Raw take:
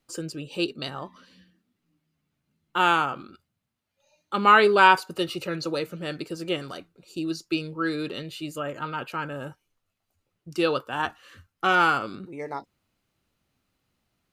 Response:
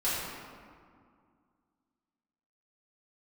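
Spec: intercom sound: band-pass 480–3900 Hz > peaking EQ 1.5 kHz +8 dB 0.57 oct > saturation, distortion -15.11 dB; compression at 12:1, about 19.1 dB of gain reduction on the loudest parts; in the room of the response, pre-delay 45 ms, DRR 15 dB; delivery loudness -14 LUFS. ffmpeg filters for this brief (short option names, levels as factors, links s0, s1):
-filter_complex "[0:a]acompressor=threshold=0.0316:ratio=12,asplit=2[s0][s1];[1:a]atrim=start_sample=2205,adelay=45[s2];[s1][s2]afir=irnorm=-1:irlink=0,volume=0.0596[s3];[s0][s3]amix=inputs=2:normalize=0,highpass=480,lowpass=3900,equalizer=f=1500:t=o:w=0.57:g=8,asoftclip=threshold=0.0596,volume=12.6"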